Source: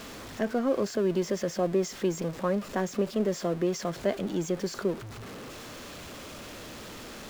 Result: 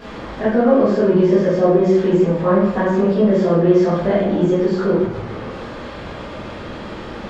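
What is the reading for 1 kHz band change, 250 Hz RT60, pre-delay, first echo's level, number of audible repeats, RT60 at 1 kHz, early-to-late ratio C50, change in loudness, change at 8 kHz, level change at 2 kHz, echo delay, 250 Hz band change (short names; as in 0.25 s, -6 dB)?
+13.0 dB, 0.90 s, 13 ms, none, none, 0.80 s, 0.5 dB, +14.0 dB, n/a, +11.0 dB, none, +14.5 dB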